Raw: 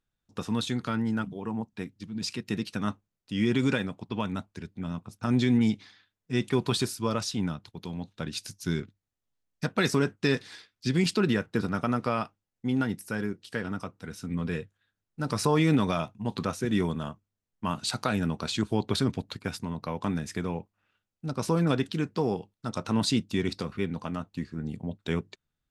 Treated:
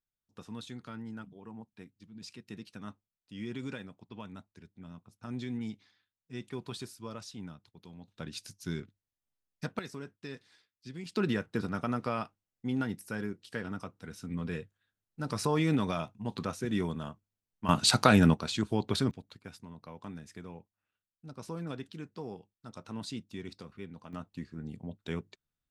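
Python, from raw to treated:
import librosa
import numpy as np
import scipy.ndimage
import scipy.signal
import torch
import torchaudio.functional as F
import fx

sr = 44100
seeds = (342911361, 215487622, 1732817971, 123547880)

y = fx.gain(x, sr, db=fx.steps((0.0, -14.0), (8.08, -7.0), (9.79, -18.0), (11.16, -5.0), (17.69, 6.5), (18.34, -3.0), (19.11, -14.0), (24.13, -7.0)))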